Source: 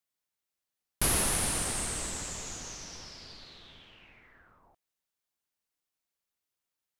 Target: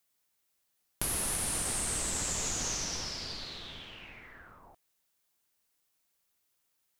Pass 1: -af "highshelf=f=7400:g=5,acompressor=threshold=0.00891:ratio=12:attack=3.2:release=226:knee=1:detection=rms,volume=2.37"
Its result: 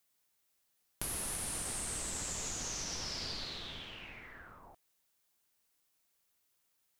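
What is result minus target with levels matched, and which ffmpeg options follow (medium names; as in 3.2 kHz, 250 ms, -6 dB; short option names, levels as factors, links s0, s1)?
compression: peak gain reduction +6 dB
-af "highshelf=f=7400:g=5,acompressor=threshold=0.0188:ratio=12:attack=3.2:release=226:knee=1:detection=rms,volume=2.37"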